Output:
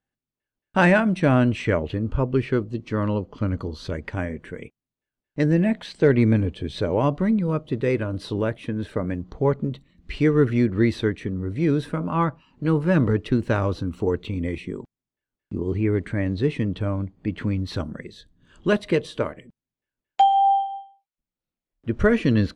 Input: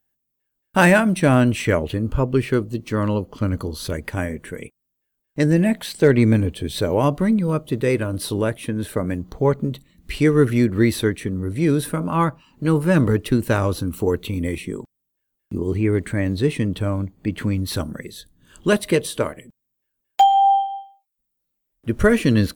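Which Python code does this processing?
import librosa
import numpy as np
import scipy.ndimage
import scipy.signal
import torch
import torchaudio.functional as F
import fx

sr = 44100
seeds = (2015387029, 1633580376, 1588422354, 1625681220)

y = fx.air_absorb(x, sr, metres=130.0)
y = F.gain(torch.from_numpy(y), -2.5).numpy()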